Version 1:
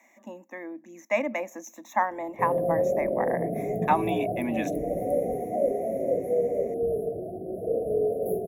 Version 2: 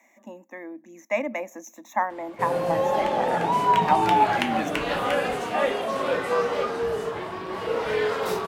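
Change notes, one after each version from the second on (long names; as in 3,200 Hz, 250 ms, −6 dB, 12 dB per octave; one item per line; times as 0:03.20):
background: remove linear-phase brick-wall band-stop 750–9,800 Hz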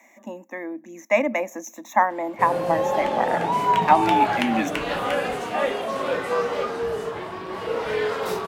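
speech +6.0 dB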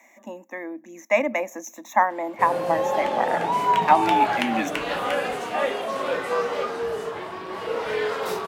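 master: add low-shelf EQ 200 Hz −7.5 dB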